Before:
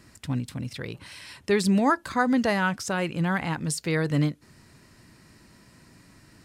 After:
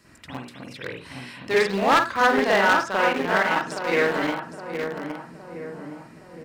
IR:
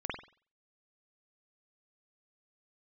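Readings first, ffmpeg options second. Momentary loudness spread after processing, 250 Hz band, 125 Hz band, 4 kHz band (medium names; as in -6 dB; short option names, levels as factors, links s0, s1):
20 LU, -3.5 dB, -9.5 dB, +6.0 dB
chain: -filter_complex "[0:a]asplit=2[s0][s1];[s1]adelay=816,lowpass=f=1500:p=1,volume=0.562,asplit=2[s2][s3];[s3]adelay=816,lowpass=f=1500:p=1,volume=0.53,asplit=2[s4][s5];[s5]adelay=816,lowpass=f=1500:p=1,volume=0.53,asplit=2[s6][s7];[s7]adelay=816,lowpass=f=1500:p=1,volume=0.53,asplit=2[s8][s9];[s9]adelay=816,lowpass=f=1500:p=1,volume=0.53,asplit=2[s10][s11];[s11]adelay=816,lowpass=f=1500:p=1,volume=0.53,asplit=2[s12][s13];[s13]adelay=816,lowpass=f=1500:p=1,volume=0.53[s14];[s0][s2][s4][s6][s8][s10][s12][s14]amix=inputs=8:normalize=0,acrossover=split=330|2400[s15][s16][s17];[s15]acompressor=threshold=0.0112:ratio=20[s18];[s18][s16][s17]amix=inputs=3:normalize=0[s19];[1:a]atrim=start_sample=2205,atrim=end_sample=6615[s20];[s19][s20]afir=irnorm=-1:irlink=0,asplit=2[s21][s22];[s22]aeval=exprs='val(0)*gte(abs(val(0)),0.075)':c=same,volume=0.531[s23];[s21][s23]amix=inputs=2:normalize=0,acrossover=split=5900[s24][s25];[s25]acompressor=threshold=0.00282:ratio=4:attack=1:release=60[s26];[s24][s26]amix=inputs=2:normalize=0,bandreject=f=50:t=h:w=6,bandreject=f=100:t=h:w=6,bandreject=f=150:t=h:w=6,aeval=exprs='0.282*(abs(mod(val(0)/0.282+3,4)-2)-1)':c=same,lowshelf=f=230:g=-7.5,volume=1.12"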